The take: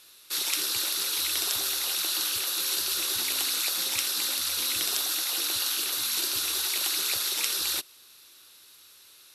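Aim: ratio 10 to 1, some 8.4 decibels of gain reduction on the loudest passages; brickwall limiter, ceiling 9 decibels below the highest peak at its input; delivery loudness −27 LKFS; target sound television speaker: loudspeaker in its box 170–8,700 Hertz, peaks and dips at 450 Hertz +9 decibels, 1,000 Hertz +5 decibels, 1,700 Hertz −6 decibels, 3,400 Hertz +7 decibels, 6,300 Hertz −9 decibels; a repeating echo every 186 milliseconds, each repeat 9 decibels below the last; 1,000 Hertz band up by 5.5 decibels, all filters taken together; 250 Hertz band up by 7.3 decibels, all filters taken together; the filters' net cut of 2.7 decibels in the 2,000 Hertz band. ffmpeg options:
ffmpeg -i in.wav -af "equalizer=frequency=250:width_type=o:gain=8.5,equalizer=frequency=1000:width_type=o:gain=5.5,equalizer=frequency=2000:width_type=o:gain=-4.5,acompressor=threshold=-32dB:ratio=10,alimiter=level_in=2dB:limit=-24dB:level=0:latency=1,volume=-2dB,highpass=frequency=170:width=0.5412,highpass=frequency=170:width=1.3066,equalizer=frequency=450:width_type=q:width=4:gain=9,equalizer=frequency=1000:width_type=q:width=4:gain=5,equalizer=frequency=1700:width_type=q:width=4:gain=-6,equalizer=frequency=3400:width_type=q:width=4:gain=7,equalizer=frequency=6300:width_type=q:width=4:gain=-9,lowpass=frequency=8700:width=0.5412,lowpass=frequency=8700:width=1.3066,aecho=1:1:186|372|558|744:0.355|0.124|0.0435|0.0152,volume=7.5dB" out.wav

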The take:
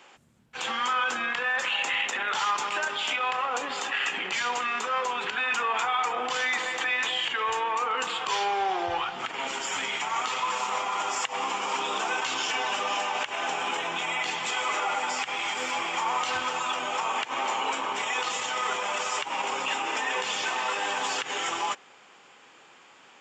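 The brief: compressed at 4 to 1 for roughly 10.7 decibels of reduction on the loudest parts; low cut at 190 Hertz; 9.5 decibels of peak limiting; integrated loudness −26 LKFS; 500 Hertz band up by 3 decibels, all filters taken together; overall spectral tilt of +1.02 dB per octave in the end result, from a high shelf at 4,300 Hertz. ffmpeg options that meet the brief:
ffmpeg -i in.wav -af "highpass=190,equalizer=frequency=500:width_type=o:gain=3.5,highshelf=frequency=4300:gain=8.5,acompressor=threshold=-35dB:ratio=4,volume=12.5dB,alimiter=limit=-18.5dB:level=0:latency=1" out.wav

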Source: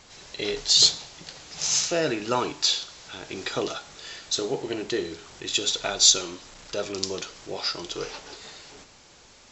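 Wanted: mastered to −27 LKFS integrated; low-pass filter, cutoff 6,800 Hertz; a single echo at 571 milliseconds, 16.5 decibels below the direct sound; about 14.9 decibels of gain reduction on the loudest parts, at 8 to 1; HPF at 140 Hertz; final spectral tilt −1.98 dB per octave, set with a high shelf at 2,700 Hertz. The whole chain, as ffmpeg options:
ffmpeg -i in.wav -af "highpass=140,lowpass=6800,highshelf=frequency=2700:gain=-5,acompressor=threshold=-33dB:ratio=8,aecho=1:1:571:0.15,volume=10.5dB" out.wav

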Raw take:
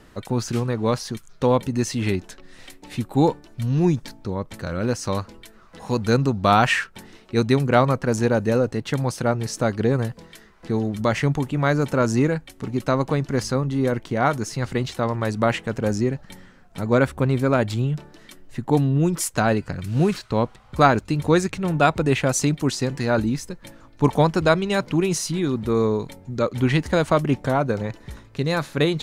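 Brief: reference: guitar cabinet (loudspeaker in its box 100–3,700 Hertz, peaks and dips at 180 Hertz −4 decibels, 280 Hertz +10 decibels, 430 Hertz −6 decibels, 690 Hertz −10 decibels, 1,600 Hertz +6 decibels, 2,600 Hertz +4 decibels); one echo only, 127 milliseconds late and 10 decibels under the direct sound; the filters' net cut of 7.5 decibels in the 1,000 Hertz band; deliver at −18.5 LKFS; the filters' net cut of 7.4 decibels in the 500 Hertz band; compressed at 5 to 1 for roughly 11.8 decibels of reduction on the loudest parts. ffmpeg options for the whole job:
ffmpeg -i in.wav -af "equalizer=frequency=500:width_type=o:gain=-3,equalizer=frequency=1000:width_type=o:gain=-8,acompressor=threshold=-28dB:ratio=5,highpass=100,equalizer=frequency=180:width_type=q:width=4:gain=-4,equalizer=frequency=280:width_type=q:width=4:gain=10,equalizer=frequency=430:width_type=q:width=4:gain=-6,equalizer=frequency=690:width_type=q:width=4:gain=-10,equalizer=frequency=1600:width_type=q:width=4:gain=6,equalizer=frequency=2600:width_type=q:width=4:gain=4,lowpass=frequency=3700:width=0.5412,lowpass=frequency=3700:width=1.3066,aecho=1:1:127:0.316,volume=12.5dB" out.wav

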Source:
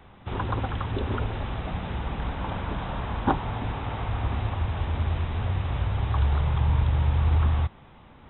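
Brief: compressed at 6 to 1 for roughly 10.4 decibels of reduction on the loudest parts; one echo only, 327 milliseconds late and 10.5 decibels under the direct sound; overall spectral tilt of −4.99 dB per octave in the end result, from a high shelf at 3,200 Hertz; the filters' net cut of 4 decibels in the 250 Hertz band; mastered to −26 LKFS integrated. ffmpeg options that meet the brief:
ffmpeg -i in.wav -af "equalizer=frequency=250:width_type=o:gain=-6,highshelf=frequency=3200:gain=6.5,acompressor=threshold=-30dB:ratio=6,aecho=1:1:327:0.299,volume=9dB" out.wav

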